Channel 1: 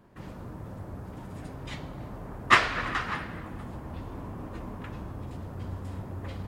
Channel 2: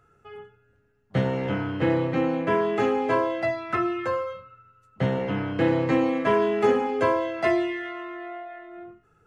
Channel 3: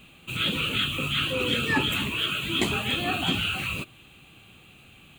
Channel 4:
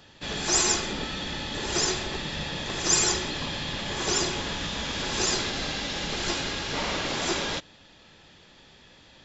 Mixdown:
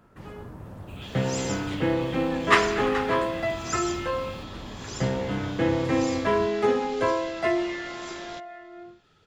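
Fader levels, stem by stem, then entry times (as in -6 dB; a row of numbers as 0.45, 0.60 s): -0.5, -2.0, -18.5, -13.0 dB; 0.00, 0.00, 0.60, 0.80 s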